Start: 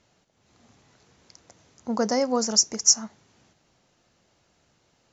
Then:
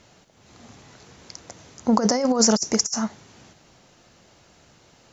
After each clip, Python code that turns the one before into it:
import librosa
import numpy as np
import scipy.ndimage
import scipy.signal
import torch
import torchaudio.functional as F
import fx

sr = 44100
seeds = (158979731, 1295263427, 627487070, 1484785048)

y = fx.over_compress(x, sr, threshold_db=-26.0, ratio=-0.5)
y = y * librosa.db_to_amplitude(7.0)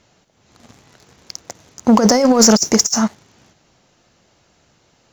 y = fx.leveller(x, sr, passes=2)
y = y * librosa.db_to_amplitude(1.5)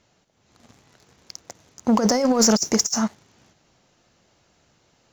y = fx.rider(x, sr, range_db=10, speed_s=2.0)
y = y * librosa.db_to_amplitude(-6.0)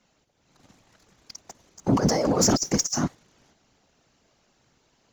y = fx.whisperise(x, sr, seeds[0])
y = y * librosa.db_to_amplitude(-3.5)